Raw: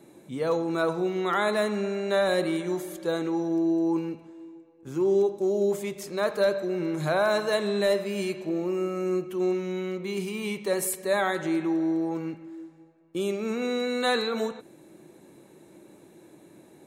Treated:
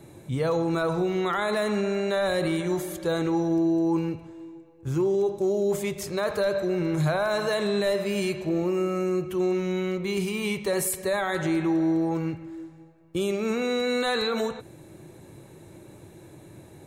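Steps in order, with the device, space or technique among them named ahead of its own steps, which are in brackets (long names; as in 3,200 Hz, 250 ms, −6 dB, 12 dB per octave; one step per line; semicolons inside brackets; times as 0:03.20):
car stereo with a boomy subwoofer (low shelf with overshoot 150 Hz +12.5 dB, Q 1.5; brickwall limiter −22 dBFS, peak gain reduction 7.5 dB)
level +4.5 dB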